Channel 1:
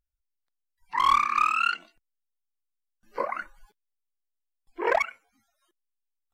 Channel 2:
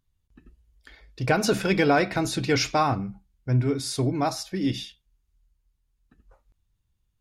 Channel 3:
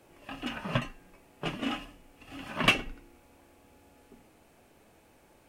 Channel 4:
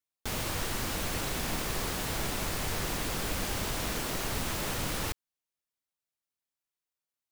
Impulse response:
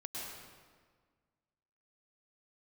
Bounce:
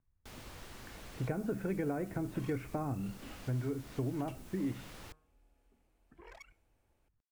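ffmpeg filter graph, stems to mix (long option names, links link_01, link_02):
-filter_complex "[0:a]acrossover=split=150|3000[link_01][link_02][link_03];[link_02]acompressor=threshold=-39dB:ratio=4[link_04];[link_01][link_04][link_03]amix=inputs=3:normalize=0,agate=range=-33dB:threshold=-58dB:ratio=3:detection=peak,adelay=1400,volume=-18dB[link_05];[1:a]lowpass=frequency=2000:width=0.5412,lowpass=frequency=2000:width=1.3066,volume=-3.5dB[link_06];[2:a]adelay=1600,volume=-18.5dB[link_07];[3:a]highshelf=frequency=5500:gain=-4,bandreject=frequency=155.4:width_type=h:width=4,bandreject=frequency=310.8:width_type=h:width=4,bandreject=frequency=466.2:width_type=h:width=4,bandreject=frequency=621.6:width_type=h:width=4,bandreject=frequency=777:width_type=h:width=4,bandreject=frequency=932.4:width_type=h:width=4,bandreject=frequency=1087.8:width_type=h:width=4,bandreject=frequency=1243.2:width_type=h:width=4,bandreject=frequency=1398.6:width_type=h:width=4,bandreject=frequency=1554:width_type=h:width=4,bandreject=frequency=1709.4:width_type=h:width=4,volume=-16dB[link_08];[link_05][link_06][link_07][link_08]amix=inputs=4:normalize=0,acrossover=split=470|6500[link_09][link_10][link_11];[link_09]acompressor=threshold=-34dB:ratio=4[link_12];[link_10]acompressor=threshold=-48dB:ratio=4[link_13];[link_11]acompressor=threshold=-58dB:ratio=4[link_14];[link_12][link_13][link_14]amix=inputs=3:normalize=0"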